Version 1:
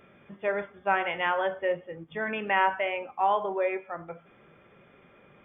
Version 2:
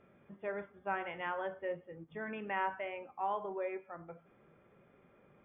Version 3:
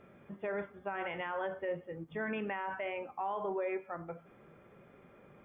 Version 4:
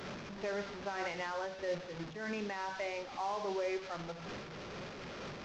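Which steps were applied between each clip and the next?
low-pass filter 1,200 Hz 6 dB per octave; dynamic equaliser 640 Hz, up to −4 dB, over −41 dBFS, Q 1.1; level −6.5 dB
brickwall limiter −34 dBFS, peak gain reduction 12 dB; level +6 dB
linear delta modulator 32 kbit/s, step −39 dBFS; amplitude modulation by smooth noise, depth 65%; level +2 dB

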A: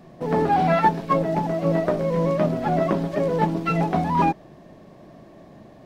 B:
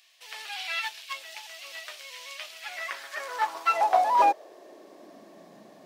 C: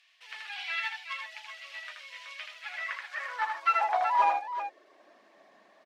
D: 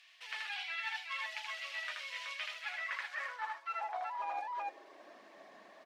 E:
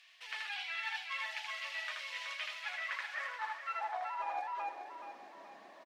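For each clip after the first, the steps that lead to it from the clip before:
bass and treble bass −11 dB, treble +8 dB; high-pass filter sweep 2,800 Hz → 180 Hz, 0:02.52–0:05.45; low-shelf EQ 220 Hz −8.5 dB; level −2 dB
reverb reduction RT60 0.69 s; resonant band-pass 1,800 Hz, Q 1; multi-tap delay 79/149/376 ms −4.5/−17.5/−9 dB
reversed playback; downward compressor 16 to 1, threshold −39 dBFS, peak gain reduction 20 dB; reversed playback; convolution reverb RT60 1.4 s, pre-delay 5 ms, DRR 19.5 dB; level +3 dB
repeating echo 425 ms, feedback 41%, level −9.5 dB

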